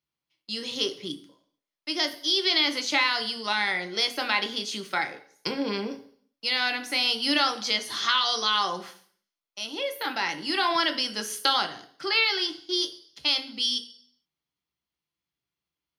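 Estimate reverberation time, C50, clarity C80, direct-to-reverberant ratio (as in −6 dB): 0.55 s, 14.0 dB, 17.5 dB, 6.0 dB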